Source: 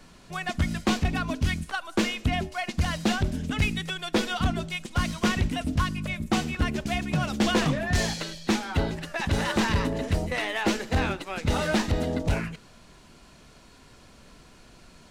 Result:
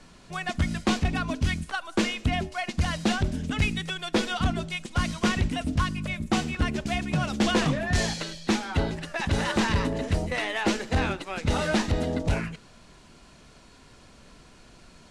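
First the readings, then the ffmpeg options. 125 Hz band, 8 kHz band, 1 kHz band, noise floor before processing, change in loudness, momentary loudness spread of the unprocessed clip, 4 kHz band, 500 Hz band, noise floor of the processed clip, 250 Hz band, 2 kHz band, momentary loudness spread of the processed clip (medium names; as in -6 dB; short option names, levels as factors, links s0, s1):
0.0 dB, 0.0 dB, 0.0 dB, -53 dBFS, 0.0 dB, 6 LU, 0.0 dB, 0.0 dB, -53 dBFS, 0.0 dB, 0.0 dB, 6 LU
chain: -af "lowpass=f=11000:w=0.5412,lowpass=f=11000:w=1.3066"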